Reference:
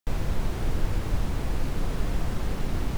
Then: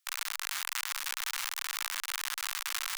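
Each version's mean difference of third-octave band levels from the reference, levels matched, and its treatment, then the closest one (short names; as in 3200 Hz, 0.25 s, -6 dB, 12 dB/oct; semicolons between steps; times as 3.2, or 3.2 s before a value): 22.0 dB: half-waves squared off; inverse Chebyshev high-pass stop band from 440 Hz, stop band 50 dB; high shelf 2800 Hz +7.5 dB; limiter -11 dBFS, peak gain reduction 6.5 dB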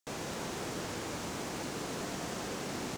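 5.0 dB: HPF 240 Hz 12 dB/oct; bell 6700 Hz +8.5 dB 1 oct; on a send: loudspeakers at several distances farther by 39 m -9 dB, 68 m -9 dB; on the sum: Doppler distortion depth 0.19 ms; gain -2.5 dB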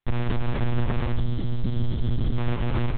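12.0 dB: spectral gain 1.16–2.38, 390–3000 Hz -12 dB; hard clip -22.5 dBFS, distortion -12 dB; on a send: feedback echo 0.115 s, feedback 39%, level -11.5 dB; on the sum: monotone LPC vocoder at 8 kHz 120 Hz; gain +4.5 dB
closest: second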